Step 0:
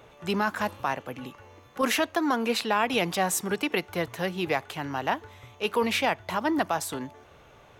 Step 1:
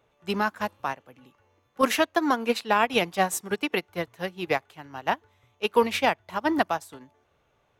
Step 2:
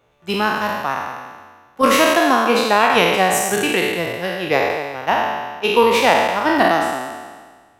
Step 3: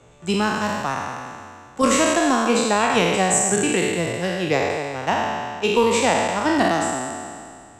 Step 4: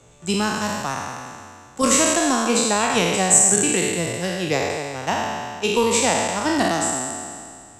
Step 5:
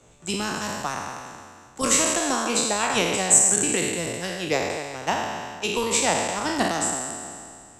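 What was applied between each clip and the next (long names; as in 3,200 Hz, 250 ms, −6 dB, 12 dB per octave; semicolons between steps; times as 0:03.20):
expander for the loud parts 2.5 to 1, over −35 dBFS; level +6.5 dB
peak hold with a decay on every bin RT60 1.53 s; level +4.5 dB
low-pass with resonance 7,700 Hz, resonance Q 8.9; low-shelf EQ 290 Hz +11.5 dB; multiband upward and downward compressor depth 40%; level −6.5 dB
bass and treble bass +2 dB, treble +9 dB; level −2 dB
harmonic and percussive parts rebalanced percussive +9 dB; level −8 dB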